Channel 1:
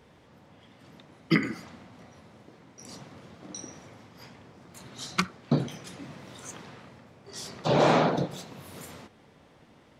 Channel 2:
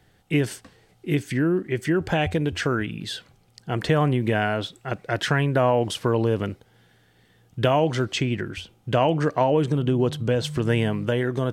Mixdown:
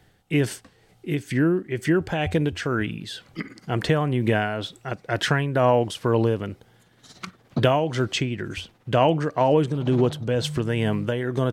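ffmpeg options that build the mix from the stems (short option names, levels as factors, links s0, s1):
-filter_complex "[0:a]tremolo=f=17:d=0.76,adelay=2050,volume=1.26[s0];[1:a]volume=1.26,asplit=2[s1][s2];[s2]apad=whole_len=531279[s3];[s0][s3]sidechaincompress=threshold=0.0224:ratio=8:attack=40:release=1010[s4];[s4][s1]amix=inputs=2:normalize=0,tremolo=f=2.1:d=0.48"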